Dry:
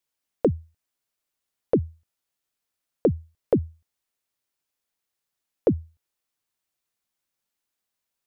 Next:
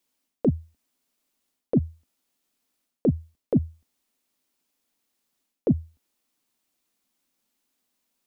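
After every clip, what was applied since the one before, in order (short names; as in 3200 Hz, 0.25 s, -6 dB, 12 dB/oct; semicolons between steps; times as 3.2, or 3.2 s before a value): fifteen-band EQ 100 Hz -10 dB, 250 Hz +11 dB, 1600 Hz -3 dB; reverse; compressor 10:1, threshold -25 dBFS, peak gain reduction 14 dB; reverse; gain +6.5 dB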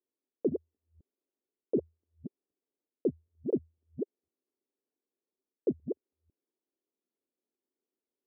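reverse delay 0.252 s, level -5.5 dB; band-pass 390 Hz, Q 4.1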